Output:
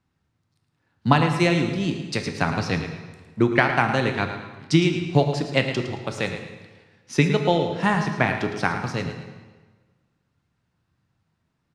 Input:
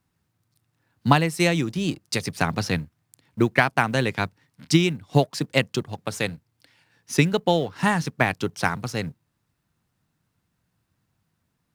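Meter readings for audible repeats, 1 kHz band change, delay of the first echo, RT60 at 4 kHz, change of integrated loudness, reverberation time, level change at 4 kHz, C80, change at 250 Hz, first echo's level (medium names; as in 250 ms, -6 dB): 2, +1.0 dB, 110 ms, 1.2 s, +1.0 dB, 1.4 s, -1.0 dB, 6.5 dB, +1.5 dB, -10.5 dB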